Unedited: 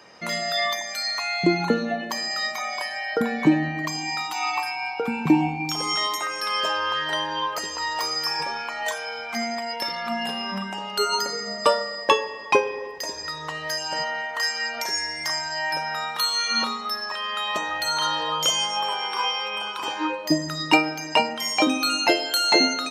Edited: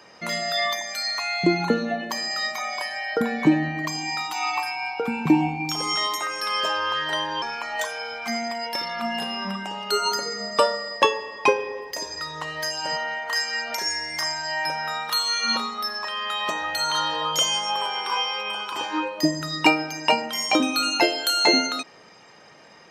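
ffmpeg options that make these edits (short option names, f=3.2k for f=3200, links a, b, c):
-filter_complex "[0:a]asplit=2[a][b];[a]atrim=end=7.422[c];[b]atrim=start=8.488[d];[c][d]acrossfade=d=0.004:c1=hsin:c2=hsin"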